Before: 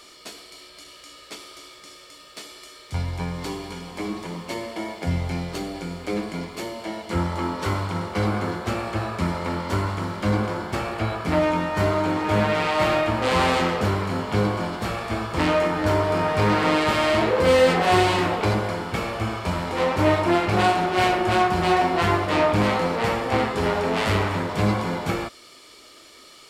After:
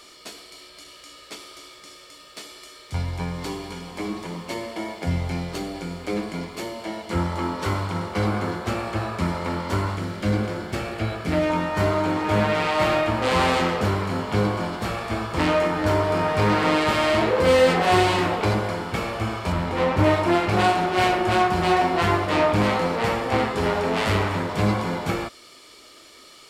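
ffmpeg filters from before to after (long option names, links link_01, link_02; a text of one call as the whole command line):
ffmpeg -i in.wav -filter_complex "[0:a]asettb=1/sr,asplit=3[link_01][link_02][link_03];[link_01]atrim=end=9.964[link_04];[link_02]atrim=start=9.96:end=11.5,asetpts=PTS-STARTPTS,afade=type=in:duration=0.004:curve=qsin,afade=type=out:start_time=1.536:duration=0.004:curve=qsin,equalizer=frequency=990:width=1.9:gain=-8[link_05];[link_03]atrim=start=11.496[link_06];[link_04][link_05]acrossfade=duration=0.004:curve1=hsin:curve2=qsin[link_07];[link_07][link_06]acrossfade=duration=0.004:curve1=qsin:curve2=hsin,asettb=1/sr,asplit=3[link_08][link_09][link_10];[link_08]atrim=end=19.524[link_11];[link_09]atrim=start=19.52:end=20.04,asetpts=PTS-STARTPTS,afade=type=in:duration=0.004:curve=qsin,afade=type=out:start_time=0.516:duration=0.004:curve=qsin,bass=frequency=250:gain=5,treble=frequency=4000:gain=-5[link_12];[link_10]atrim=start=20.036[link_13];[link_11][link_12]acrossfade=duration=0.004:curve1=hsin:curve2=qsin[link_14];[link_14][link_13]acrossfade=duration=0.004:curve1=qsin:curve2=hsin" out.wav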